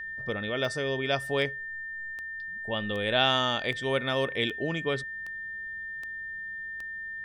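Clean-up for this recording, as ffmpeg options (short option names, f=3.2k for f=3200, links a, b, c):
-af "adeclick=t=4,bandreject=f=63.2:t=h:w=4,bandreject=f=126.4:t=h:w=4,bandreject=f=189.6:t=h:w=4,bandreject=f=1.8k:w=30"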